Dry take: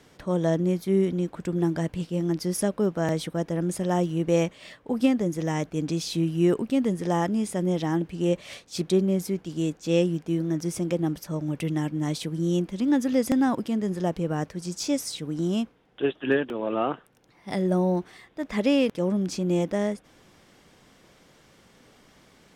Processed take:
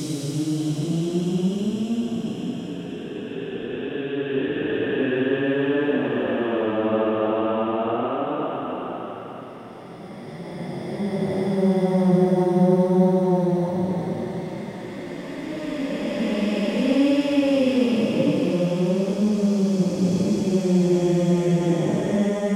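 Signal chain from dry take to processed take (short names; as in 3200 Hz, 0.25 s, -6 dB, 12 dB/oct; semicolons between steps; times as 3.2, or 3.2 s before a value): time blur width 0.405 s; Paulstretch 4.9×, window 0.10 s, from 15.21; gain +7.5 dB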